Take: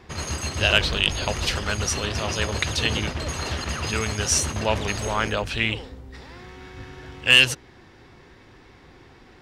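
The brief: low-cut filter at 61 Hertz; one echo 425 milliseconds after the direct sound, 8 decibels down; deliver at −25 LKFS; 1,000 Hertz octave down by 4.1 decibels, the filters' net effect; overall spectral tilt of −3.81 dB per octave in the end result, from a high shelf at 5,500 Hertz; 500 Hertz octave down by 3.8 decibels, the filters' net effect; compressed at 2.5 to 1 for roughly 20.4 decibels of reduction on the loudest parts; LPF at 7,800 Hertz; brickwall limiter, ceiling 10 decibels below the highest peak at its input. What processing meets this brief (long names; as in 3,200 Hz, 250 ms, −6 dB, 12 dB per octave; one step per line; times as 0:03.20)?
high-pass filter 61 Hz
low-pass filter 7,800 Hz
parametric band 500 Hz −3.5 dB
parametric band 1,000 Hz −4 dB
high-shelf EQ 5,500 Hz −8.5 dB
downward compressor 2.5 to 1, threshold −44 dBFS
brickwall limiter −32 dBFS
single-tap delay 425 ms −8 dB
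level +18 dB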